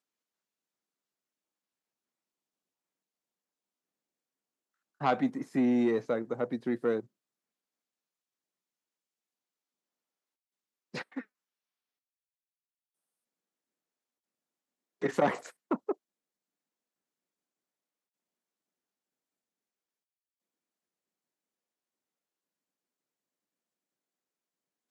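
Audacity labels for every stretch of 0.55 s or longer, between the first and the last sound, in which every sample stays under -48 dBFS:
7.040000	10.940000	silence
11.230000	15.020000	silence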